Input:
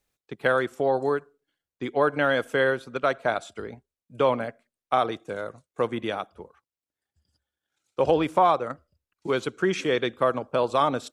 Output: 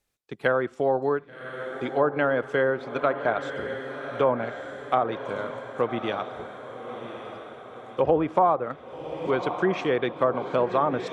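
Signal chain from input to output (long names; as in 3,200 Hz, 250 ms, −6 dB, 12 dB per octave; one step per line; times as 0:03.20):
feedback delay with all-pass diffusion 1,128 ms, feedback 54%, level −10 dB
treble cut that deepens with the level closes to 1,200 Hz, closed at −17 dBFS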